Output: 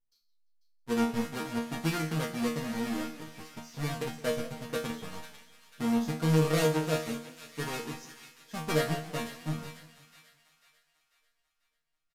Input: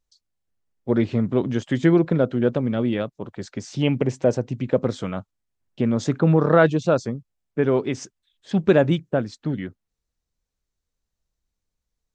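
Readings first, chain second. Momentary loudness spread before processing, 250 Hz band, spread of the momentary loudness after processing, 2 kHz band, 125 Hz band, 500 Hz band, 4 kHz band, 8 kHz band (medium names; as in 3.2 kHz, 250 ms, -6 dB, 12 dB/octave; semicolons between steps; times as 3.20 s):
15 LU, -10.5 dB, 18 LU, -7.0 dB, -9.5 dB, -12.0 dB, -1.0 dB, +1.0 dB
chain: square wave that keeps the level; on a send: feedback echo behind a high-pass 493 ms, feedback 43%, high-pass 1.7 kHz, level -11 dB; on the sum: resampled via 32 kHz; chord resonator D#3 fifth, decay 0.38 s; modulated delay 171 ms, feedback 46%, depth 128 cents, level -17 dB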